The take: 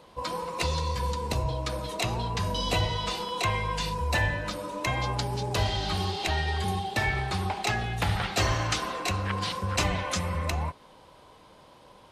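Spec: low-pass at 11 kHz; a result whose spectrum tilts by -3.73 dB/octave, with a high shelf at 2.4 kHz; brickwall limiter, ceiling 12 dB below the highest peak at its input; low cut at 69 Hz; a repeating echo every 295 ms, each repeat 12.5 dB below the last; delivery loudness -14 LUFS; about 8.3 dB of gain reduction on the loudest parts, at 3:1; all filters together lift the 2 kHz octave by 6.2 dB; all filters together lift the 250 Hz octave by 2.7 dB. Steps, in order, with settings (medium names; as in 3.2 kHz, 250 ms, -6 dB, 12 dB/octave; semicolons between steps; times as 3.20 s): high-pass 69 Hz; low-pass 11 kHz; peaking EQ 250 Hz +4 dB; peaking EQ 2 kHz +4 dB; treble shelf 2.4 kHz +7 dB; compression 3:1, threshold -30 dBFS; peak limiter -26.5 dBFS; feedback delay 295 ms, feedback 24%, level -12.5 dB; trim +20.5 dB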